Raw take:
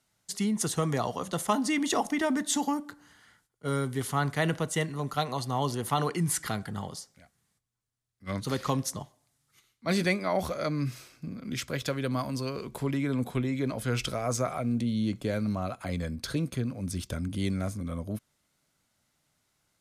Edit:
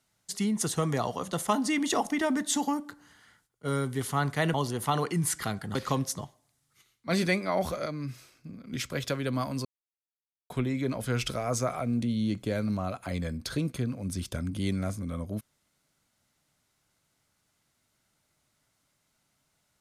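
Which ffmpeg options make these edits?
-filter_complex "[0:a]asplit=7[s0][s1][s2][s3][s4][s5][s6];[s0]atrim=end=4.542[s7];[s1]atrim=start=5.578:end=6.792[s8];[s2]atrim=start=8.528:end=10.642[s9];[s3]atrim=start=10.638:end=11.502,asetpts=PTS-STARTPTS,volume=0.531[s10];[s4]atrim=start=11.498:end=12.43,asetpts=PTS-STARTPTS,afade=t=out:st=0.928:d=0.004:c=hsin[s11];[s5]atrim=start=12.43:end=13.28,asetpts=PTS-STARTPTS,volume=0[s12];[s6]atrim=start=13.28,asetpts=PTS-STARTPTS,afade=t=in:d=0.004:c=hsin[s13];[s7][s8]acrossfade=d=0.004:c1=hsin:c2=hsin[s14];[s14][s9]acrossfade=d=0.004:c1=hsin:c2=hsin[s15];[s15][s10]acrossfade=d=0.004:c1=hsin:c2=hsin[s16];[s11][s12][s13]concat=n=3:v=0:a=1[s17];[s16][s17]acrossfade=d=0.004:c1=hsin:c2=hsin"

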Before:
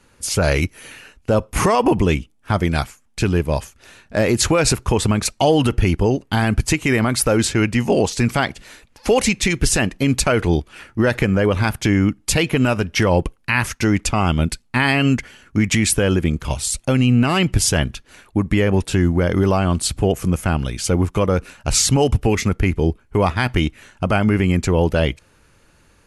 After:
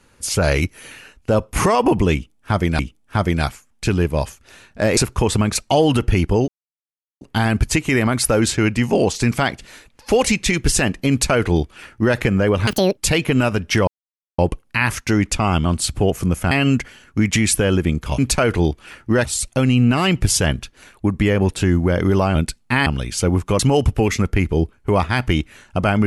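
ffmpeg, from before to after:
-filter_complex "[0:a]asplit=14[s0][s1][s2][s3][s4][s5][s6][s7][s8][s9][s10][s11][s12][s13];[s0]atrim=end=2.792[s14];[s1]atrim=start=2.138:end=4.322[s15];[s2]atrim=start=4.668:end=6.18,asetpts=PTS-STARTPTS,afade=t=out:st=1.508:d=0.004:c=hsin,apad=pad_dur=0.73[s16];[s3]atrim=start=6.18:end=11.644,asetpts=PTS-STARTPTS,afade=t=in:d=0.004:c=hsin[s17];[s4]atrim=start=11.64:end=12.22,asetpts=PTS-STARTPTS,asetrate=84231,aresample=44100[s18];[s5]atrim=start=12.216:end=13.12,asetpts=PTS-STARTPTS,afade=t=out:st=0.9:d=0.004:c=hsin,apad=pad_dur=0.51[s19];[s6]atrim=start=13.12:end=14.392,asetpts=PTS-STARTPTS,afade=t=in:d=0.004:c=hsin[s20];[s7]atrim=start=19.668:end=20.532[s21];[s8]atrim=start=14.898:end=16.572[s22];[s9]atrim=start=10.068:end=11.142[s23];[s10]atrim=start=16.568:end=19.672[s24];[s11]atrim=start=14.388:end=14.902[s25];[s12]atrim=start=20.528:end=21.262[s26];[s13]atrim=start=21.858[s27];[s14][s15]acrossfade=d=0.004:c1=hsin:c2=hsin[s28];[s16][s17]concat=n=2:v=0:a=1[s29];[s28][s29]acrossfade=d=0.004:c1=hsin:c2=hsin[s30];[s30][s18]acrossfade=d=0.004:c1=hsin:c2=hsin[s31];[s19][s20]concat=n=2:v=0:a=1[s32];[s31][s32]acrossfade=d=0.004:c1=hsin:c2=hsin[s33];[s33][s21]acrossfade=d=0.004:c1=hsin:c2=hsin[s34];[s34][s22]acrossfade=d=0.004:c1=hsin:c2=hsin[s35];[s35][s23]acrossfade=d=0.004:c1=hsin:c2=hsin[s36];[s36][s24]acrossfade=d=0.004:c1=hsin:c2=hsin[s37];[s37][s25]acrossfade=d=0.004:c1=hsin:c2=hsin[s38];[s38][s26]acrossfade=d=0.004:c1=hsin:c2=hsin[s39];[s39][s27]acrossfade=d=0.004:c1=hsin:c2=hsin"

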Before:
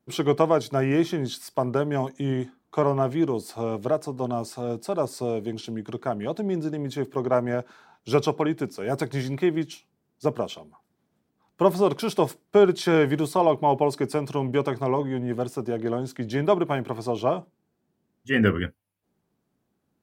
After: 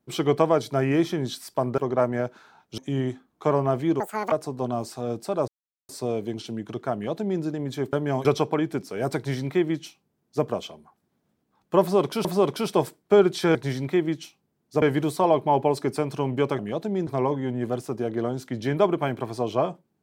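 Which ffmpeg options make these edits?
-filter_complex "[0:a]asplit=13[s0][s1][s2][s3][s4][s5][s6][s7][s8][s9][s10][s11][s12];[s0]atrim=end=1.782[s13];[s1]atrim=start=7.118:end=8.122[s14];[s2]atrim=start=2.098:end=3.324[s15];[s3]atrim=start=3.32:end=3.92,asetpts=PTS-STARTPTS,asetrate=82908,aresample=44100,atrim=end_sample=14074,asetpts=PTS-STARTPTS[s16];[s4]atrim=start=3.916:end=5.08,asetpts=PTS-STARTPTS,afade=t=out:st=1.16:d=0.004:c=hsin,apad=pad_dur=0.41[s17];[s5]atrim=start=5.08:end=7.122,asetpts=PTS-STARTPTS,afade=t=in:d=0.004:c=hsin[s18];[s6]atrim=start=1.778:end=2.102[s19];[s7]atrim=start=8.118:end=12.122[s20];[s8]atrim=start=11.678:end=12.982[s21];[s9]atrim=start=9.038:end=10.312[s22];[s10]atrim=start=12.978:end=14.752[s23];[s11]atrim=start=6.128:end=6.612[s24];[s12]atrim=start=14.748[s25];[s13][s14]acrossfade=d=0.004:c1=hsin:c2=hsin[s26];[s26][s15]acrossfade=d=0.004:c1=hsin:c2=hsin[s27];[s27][s16]acrossfade=d=0.004:c1=hsin:c2=hsin[s28];[s17][s18]concat=n=2:v=0:a=1[s29];[s28][s29]acrossfade=d=0.004:c1=hsin:c2=hsin[s30];[s30][s19]acrossfade=d=0.004:c1=hsin:c2=hsin[s31];[s31][s20]acrossfade=d=0.004:c1=hsin:c2=hsin[s32];[s32][s21]acrossfade=d=0.004:c1=hsin:c2=hsin[s33];[s33][s22]acrossfade=d=0.004:c1=hsin:c2=hsin[s34];[s34][s23]acrossfade=d=0.004:c1=hsin:c2=hsin[s35];[s35][s24]acrossfade=d=0.004:c1=hsin:c2=hsin[s36];[s36][s25]acrossfade=d=0.004:c1=hsin:c2=hsin"

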